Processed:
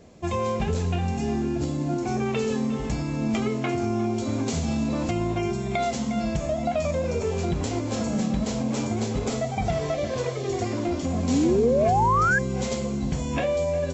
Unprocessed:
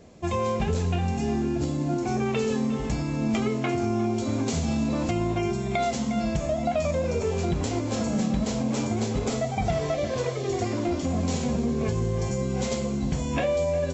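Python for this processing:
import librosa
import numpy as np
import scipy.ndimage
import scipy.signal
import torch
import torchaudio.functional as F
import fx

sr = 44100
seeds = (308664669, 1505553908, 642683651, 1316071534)

y = fx.spec_paint(x, sr, seeds[0], shape='rise', start_s=11.28, length_s=1.11, low_hz=240.0, high_hz=1700.0, level_db=-21.0)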